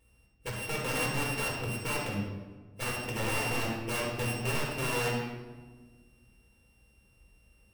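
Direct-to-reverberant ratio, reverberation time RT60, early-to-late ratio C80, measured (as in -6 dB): -4.5 dB, 1.4 s, 3.5 dB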